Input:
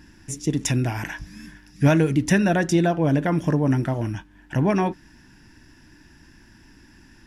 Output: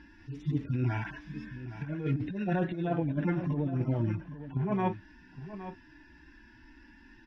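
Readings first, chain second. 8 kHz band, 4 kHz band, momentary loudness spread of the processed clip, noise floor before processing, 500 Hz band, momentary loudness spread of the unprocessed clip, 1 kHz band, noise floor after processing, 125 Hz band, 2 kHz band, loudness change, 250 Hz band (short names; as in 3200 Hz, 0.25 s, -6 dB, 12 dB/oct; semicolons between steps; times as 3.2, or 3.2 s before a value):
under -35 dB, under -15 dB, 14 LU, -52 dBFS, -11.5 dB, 13 LU, -9.5 dB, -57 dBFS, -8.0 dB, -13.5 dB, -11.0 dB, -10.5 dB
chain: median-filter separation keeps harmonic; air absorption 320 m; negative-ratio compressor -23 dBFS, ratio -0.5; tilt shelf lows -4.5 dB, about 1300 Hz; on a send: echo 0.816 s -12.5 dB; on the sum: gain -1.5 dB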